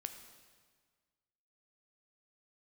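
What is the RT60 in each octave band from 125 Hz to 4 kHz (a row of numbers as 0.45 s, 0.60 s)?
1.8 s, 1.7 s, 1.6 s, 1.6 s, 1.5 s, 1.4 s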